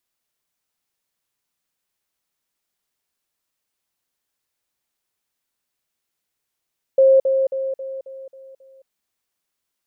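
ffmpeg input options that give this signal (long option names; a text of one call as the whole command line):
ffmpeg -f lavfi -i "aevalsrc='pow(10,(-9-6*floor(t/0.27))/20)*sin(2*PI*534*t)*clip(min(mod(t,0.27),0.22-mod(t,0.27))/0.005,0,1)':duration=1.89:sample_rate=44100" out.wav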